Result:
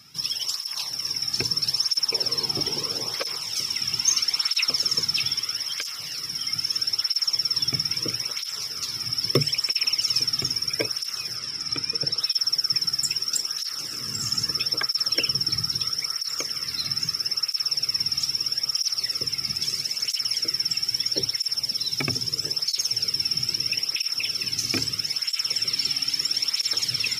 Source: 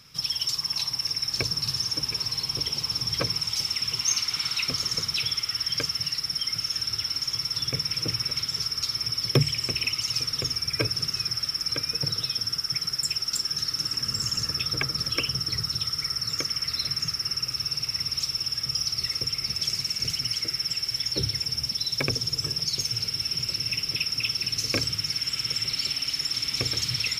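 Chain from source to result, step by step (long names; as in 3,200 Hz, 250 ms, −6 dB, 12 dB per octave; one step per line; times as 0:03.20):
0:02.12–0:03.36: parametric band 480 Hz +12.5 dB 1.7 octaves
0:11.36–0:12.20: Bessel low-pass filter 8,300 Hz, order 4
bass and treble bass −1 dB, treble +3 dB
through-zero flanger with one copy inverted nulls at 0.77 Hz, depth 2.1 ms
level +3 dB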